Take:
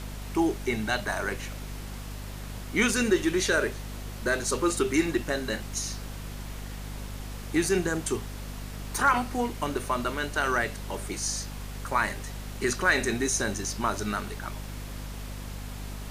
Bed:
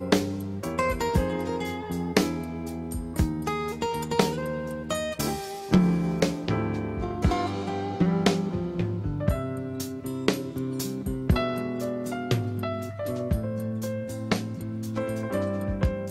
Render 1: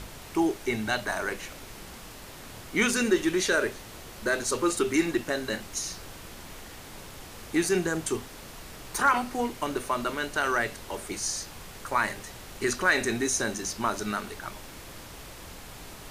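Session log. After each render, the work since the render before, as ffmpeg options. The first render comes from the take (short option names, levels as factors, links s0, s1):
-af "bandreject=f=50:t=h:w=6,bandreject=f=100:t=h:w=6,bandreject=f=150:t=h:w=6,bandreject=f=200:t=h:w=6,bandreject=f=250:t=h:w=6"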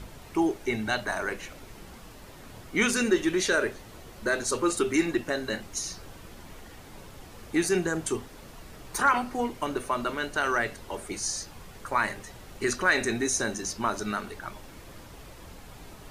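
-af "afftdn=nr=7:nf=-45"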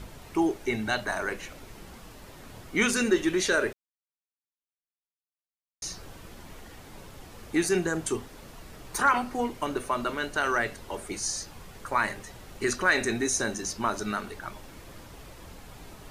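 -filter_complex "[0:a]asplit=3[s0][s1][s2];[s0]atrim=end=3.73,asetpts=PTS-STARTPTS,afade=t=out:st=3.726:d=0.004:c=hsin[s3];[s1]atrim=start=3.73:end=5.82,asetpts=PTS-STARTPTS,volume=0[s4];[s2]atrim=start=5.82,asetpts=PTS-STARTPTS,afade=t=in:d=0.004:c=hsin[s5];[s3][s4][s5]concat=n=3:v=0:a=1"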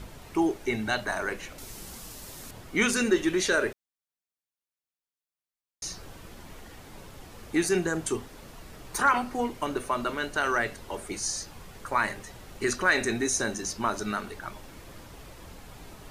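-filter_complex "[0:a]asettb=1/sr,asplit=3[s0][s1][s2];[s0]atrim=end=1.584[s3];[s1]atrim=start=1.58:end=2.51,asetpts=PTS-STARTPTS,afade=t=in:d=0.004:c=qsin,afade=t=out:st=0.926:d=0.004:c=qsin,bass=f=250:g=1,treble=f=4000:g=13[s4];[s2]atrim=start=2.506[s5];[s3][s4]acrossfade=d=0.004:c1=hsin:c2=qsin[s6];[s6][s5]acrossfade=d=0.004:c1=qsin:c2=hsin"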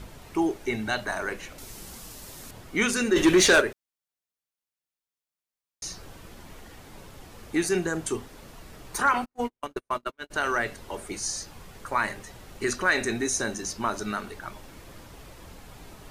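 -filter_complex "[0:a]asplit=3[s0][s1][s2];[s0]afade=t=out:st=3.15:d=0.02[s3];[s1]aeval=exprs='0.237*sin(PI/2*2*val(0)/0.237)':c=same,afade=t=in:st=3.15:d=0.02,afade=t=out:st=3.6:d=0.02[s4];[s2]afade=t=in:st=3.6:d=0.02[s5];[s3][s4][s5]amix=inputs=3:normalize=0,asplit=3[s6][s7][s8];[s6]afade=t=out:st=9.24:d=0.02[s9];[s7]agate=range=0.00398:threshold=0.0355:ratio=16:release=100:detection=peak,afade=t=in:st=9.24:d=0.02,afade=t=out:st=10.3:d=0.02[s10];[s8]afade=t=in:st=10.3:d=0.02[s11];[s9][s10][s11]amix=inputs=3:normalize=0"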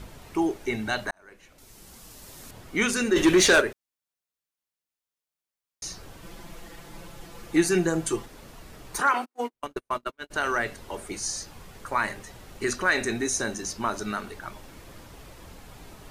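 -filter_complex "[0:a]asettb=1/sr,asplit=3[s0][s1][s2];[s0]atrim=end=6.224[s3];[s1]atrim=start=6.22:end=8.26,asetpts=PTS-STARTPTS,afade=t=in:d=0.004:c=qsin,afade=t=out:st=2.036:d=0.004:c=qsin,aecho=1:1:5.9:0.82,atrim=end_sample=89964[s4];[s2]atrim=start=8.256[s5];[s3][s4]acrossfade=d=0.004:c1=hsin:c2=qsin[s6];[s6][s5]acrossfade=d=0.004:c1=qsin:c2=hsin,asettb=1/sr,asplit=3[s7][s8][s9];[s7]atrim=end=9.014[s10];[s8]atrim=start=9.01:end=9.54,asetpts=PTS-STARTPTS,afade=t=in:d=0.004:c=qsin,afade=t=out:st=0.526:d=0.004:c=qsin,highpass=f=260:w=0.5412,highpass=f=260:w=1.3066[s11];[s9]atrim=start=9.536[s12];[s10][s11]acrossfade=d=0.004:c1=hsin:c2=qsin[s13];[s13][s12]acrossfade=d=0.004:c1=qsin:c2=hsin,asplit=2[s14][s15];[s14]atrim=end=1.11,asetpts=PTS-STARTPTS,afade=t=out:st=1.106:d=0.004:c=hsin[s16];[s15]atrim=start=1.11,asetpts=PTS-STARTPTS,afade=t=in:d=1.6[s17];[s16][s17]concat=n=2:v=0:a=1"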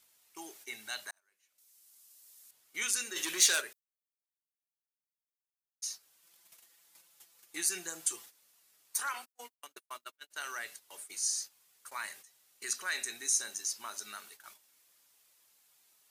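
-af "agate=range=0.251:threshold=0.0112:ratio=16:detection=peak,aderivative"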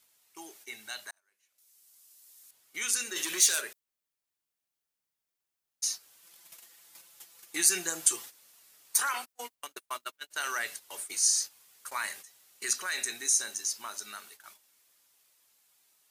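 -filter_complex "[0:a]acrossover=split=5600[s0][s1];[s0]alimiter=level_in=1.88:limit=0.0631:level=0:latency=1:release=33,volume=0.531[s2];[s2][s1]amix=inputs=2:normalize=0,dynaudnorm=f=340:g=21:m=2.51"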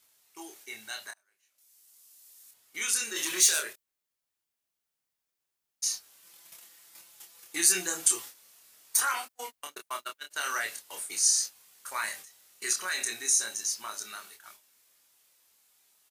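-filter_complex "[0:a]asplit=2[s0][s1];[s1]adelay=27,volume=0.631[s2];[s0][s2]amix=inputs=2:normalize=0"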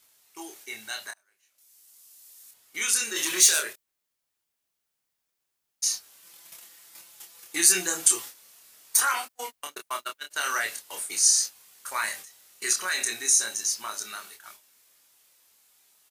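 -af "volume=1.58"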